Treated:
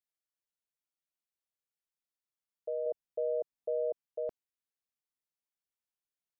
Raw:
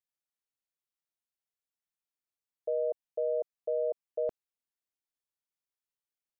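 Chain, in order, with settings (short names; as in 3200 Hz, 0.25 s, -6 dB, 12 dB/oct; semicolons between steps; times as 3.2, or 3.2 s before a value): 2.86–4.06 low shelf 400 Hz +7.5 dB; gain -4.5 dB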